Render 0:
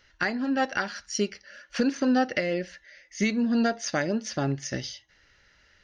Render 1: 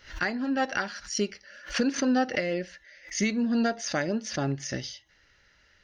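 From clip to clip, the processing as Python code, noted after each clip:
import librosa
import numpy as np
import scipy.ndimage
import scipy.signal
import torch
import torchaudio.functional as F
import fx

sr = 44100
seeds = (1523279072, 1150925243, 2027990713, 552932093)

y = fx.pre_swell(x, sr, db_per_s=150.0)
y = F.gain(torch.from_numpy(y), -1.5).numpy()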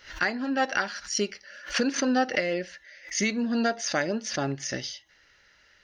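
y = fx.low_shelf(x, sr, hz=240.0, db=-8.5)
y = F.gain(torch.from_numpy(y), 3.0).numpy()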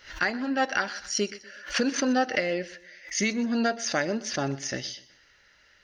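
y = fx.echo_feedback(x, sr, ms=124, feedback_pct=38, wet_db=-19)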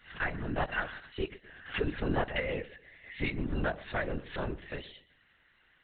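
y = fx.lpc_vocoder(x, sr, seeds[0], excitation='whisper', order=10)
y = F.gain(torch.from_numpy(y), -6.0).numpy()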